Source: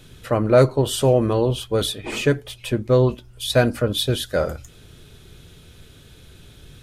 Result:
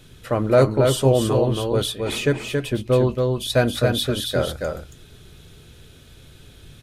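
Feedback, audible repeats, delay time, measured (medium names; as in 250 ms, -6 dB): no regular repeats, 1, 276 ms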